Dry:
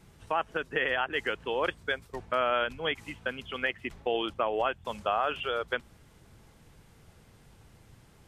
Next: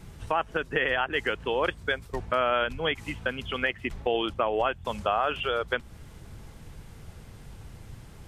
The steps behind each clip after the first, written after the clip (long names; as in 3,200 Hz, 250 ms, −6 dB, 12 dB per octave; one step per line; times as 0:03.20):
in parallel at +2 dB: downward compressor, threshold −38 dBFS, peak gain reduction 14 dB
on the sum: low-shelf EQ 110 Hz +8.5 dB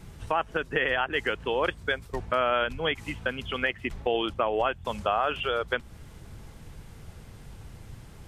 no processing that can be heard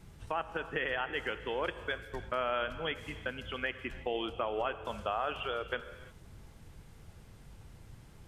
convolution reverb, pre-delay 3 ms, DRR 11 dB
level −8 dB